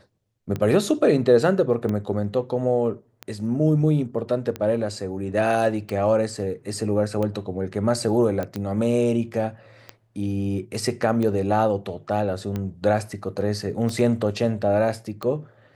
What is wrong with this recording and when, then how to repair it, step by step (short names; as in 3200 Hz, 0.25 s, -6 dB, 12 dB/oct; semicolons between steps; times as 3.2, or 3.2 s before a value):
tick 45 rpm -16 dBFS
8.43 pop -16 dBFS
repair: de-click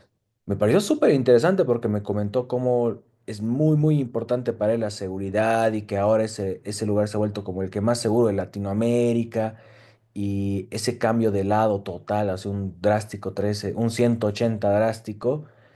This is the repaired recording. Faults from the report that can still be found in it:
none